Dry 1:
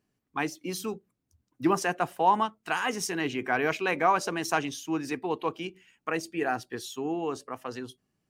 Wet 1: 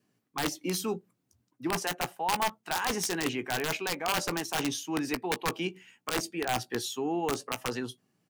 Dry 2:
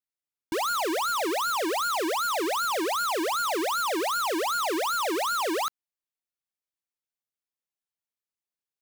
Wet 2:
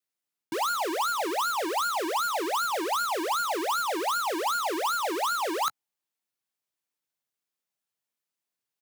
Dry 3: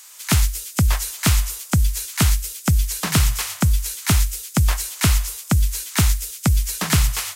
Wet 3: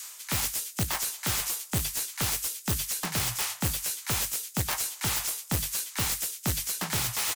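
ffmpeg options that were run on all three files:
-filter_complex "[0:a]highpass=frequency=110:width=0.5412,highpass=frequency=110:width=1.3066,adynamicequalizer=threshold=0.00562:dfrequency=840:dqfactor=5.4:tfrequency=840:tqfactor=5.4:attack=5:release=100:ratio=0.375:range=3.5:mode=boostabove:tftype=bell,areverse,acompressor=threshold=-31dB:ratio=8,areverse,aeval=exprs='(mod(18.8*val(0)+1,2)-1)/18.8':channel_layout=same,asplit=2[link_01][link_02];[link_02]adelay=17,volume=-13dB[link_03];[link_01][link_03]amix=inputs=2:normalize=0,volume=4.5dB"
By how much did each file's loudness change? −2.0, −1.0, −8.0 LU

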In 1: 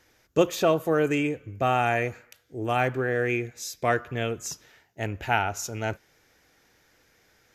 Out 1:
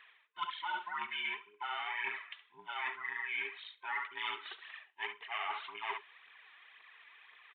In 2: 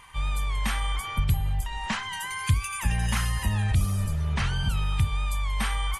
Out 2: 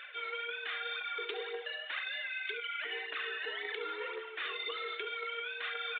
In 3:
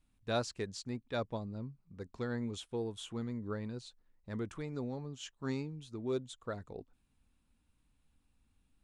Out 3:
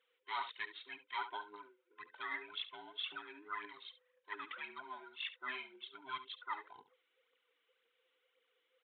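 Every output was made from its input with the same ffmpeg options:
-filter_complex "[0:a]afftfilt=real='real(if(between(b,1,1008),(2*floor((b-1)/24)+1)*24-b,b),0)':imag='imag(if(between(b,1,1008),(2*floor((b-1)/24)+1)*24-b,b),0)*if(between(b,1,1008),-1,1)':win_size=2048:overlap=0.75,aphaser=in_gain=1:out_gain=1:delay=3.6:decay=0.54:speed=1.9:type=triangular,asuperpass=centerf=3000:order=4:qfactor=0.56,asplit=2[link_01][link_02];[link_02]aecho=0:1:70:0.188[link_03];[link_01][link_03]amix=inputs=2:normalize=0,aresample=8000,aresample=44100,areverse,acompressor=threshold=-42dB:ratio=12,areverse,volume=6.5dB"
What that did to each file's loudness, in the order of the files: −12.5, −9.5, −4.5 LU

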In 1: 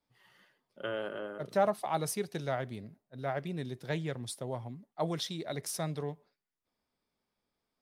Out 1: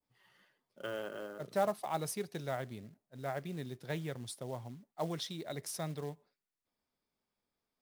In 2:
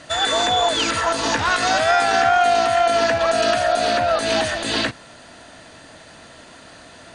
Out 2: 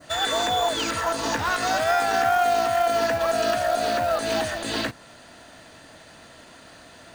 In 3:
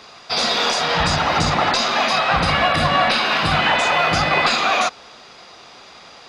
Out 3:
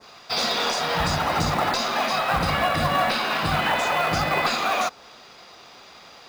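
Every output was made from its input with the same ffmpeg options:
-af "adynamicequalizer=threshold=0.0282:dfrequency=3100:dqfactor=0.74:tfrequency=3100:tqfactor=0.74:attack=5:release=100:ratio=0.375:range=2:mode=cutabove:tftype=bell,acrusher=bits=5:mode=log:mix=0:aa=0.000001,volume=-4dB"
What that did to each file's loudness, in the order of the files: −4.0, −5.0, −5.5 LU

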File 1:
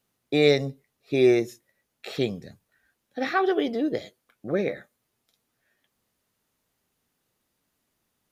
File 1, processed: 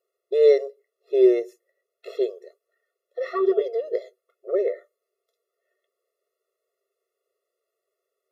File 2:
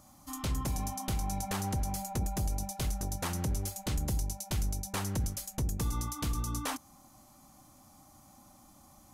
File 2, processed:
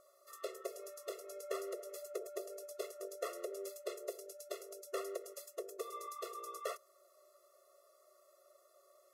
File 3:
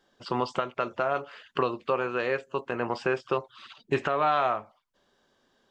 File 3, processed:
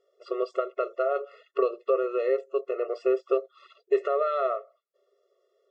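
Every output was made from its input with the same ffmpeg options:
-af "tiltshelf=frequency=930:gain=8.5,afftfilt=real='re*eq(mod(floor(b*sr/1024/360),2),1)':imag='im*eq(mod(floor(b*sr/1024/360),2),1)':win_size=1024:overlap=0.75"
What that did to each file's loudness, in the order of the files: +2.5, −10.5, +1.0 LU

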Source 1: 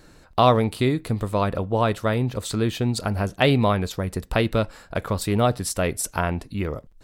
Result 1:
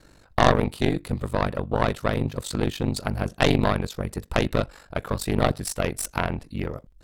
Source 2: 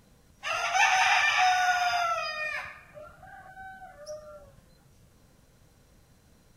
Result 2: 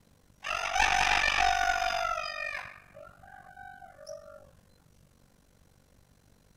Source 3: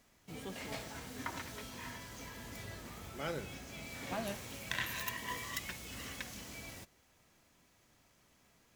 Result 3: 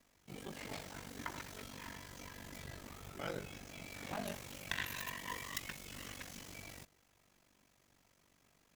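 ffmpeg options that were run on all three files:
-af "aeval=exprs='val(0)*sin(2*PI*24*n/s)':channel_layout=same,aeval=exprs='0.631*(cos(1*acos(clip(val(0)/0.631,-1,1)))-cos(1*PI/2))+0.178*(cos(4*acos(clip(val(0)/0.631,-1,1)))-cos(4*PI/2))':channel_layout=same"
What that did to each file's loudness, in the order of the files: −2.5, −2.5, −3.0 LU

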